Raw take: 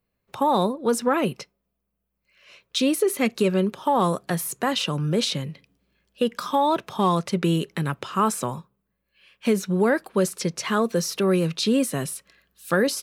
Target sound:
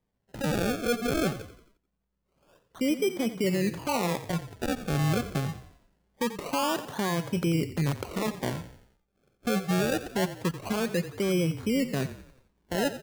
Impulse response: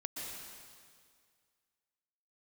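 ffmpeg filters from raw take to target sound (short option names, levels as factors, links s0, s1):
-filter_complex "[0:a]lowpass=1000,alimiter=limit=0.106:level=0:latency=1:release=35,acrusher=samples=31:mix=1:aa=0.000001:lfo=1:lforange=31:lforate=0.24,asplit=2[s0][s1];[s1]asplit=5[s2][s3][s4][s5][s6];[s2]adelay=88,afreqshift=-34,volume=0.224[s7];[s3]adelay=176,afreqshift=-68,volume=0.105[s8];[s4]adelay=264,afreqshift=-102,volume=0.0495[s9];[s5]adelay=352,afreqshift=-136,volume=0.0232[s10];[s6]adelay=440,afreqshift=-170,volume=0.011[s11];[s7][s8][s9][s10][s11]amix=inputs=5:normalize=0[s12];[s0][s12]amix=inputs=2:normalize=0"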